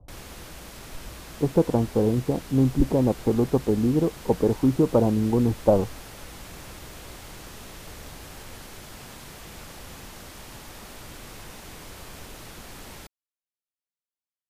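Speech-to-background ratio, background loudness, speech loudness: 19.0 dB, −42.0 LKFS, −23.0 LKFS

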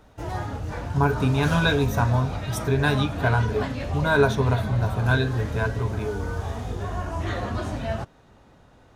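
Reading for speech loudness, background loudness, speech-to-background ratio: −24.0 LKFS, −30.5 LKFS, 6.5 dB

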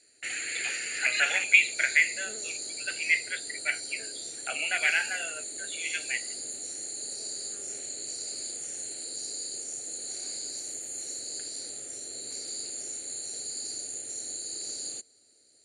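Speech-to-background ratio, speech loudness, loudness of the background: 8.0 dB, −27.0 LKFS, −35.0 LKFS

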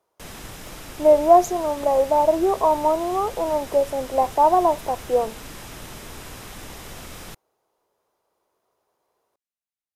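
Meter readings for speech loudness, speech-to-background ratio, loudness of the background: −20.0 LKFS, 18.0 dB, −38.0 LKFS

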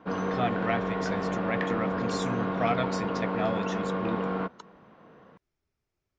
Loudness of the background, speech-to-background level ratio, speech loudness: −30.5 LKFS, −3.5 dB, −34.0 LKFS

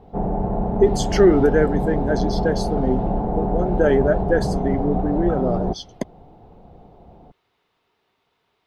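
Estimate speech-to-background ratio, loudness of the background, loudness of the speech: 2.5 dB, −24.0 LKFS, −21.5 LKFS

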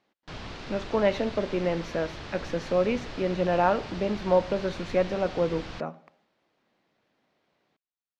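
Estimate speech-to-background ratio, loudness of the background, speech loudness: 12.5 dB, −40.5 LKFS, −28.0 LKFS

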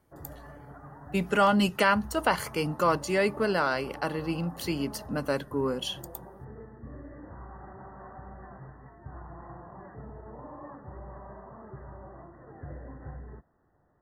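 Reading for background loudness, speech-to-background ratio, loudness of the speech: −46.0 LKFS, 18.0 dB, −28.0 LKFS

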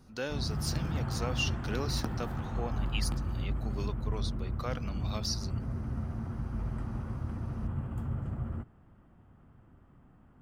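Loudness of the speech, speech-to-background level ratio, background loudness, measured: −38.5 LKFS, −2.5 dB, −36.0 LKFS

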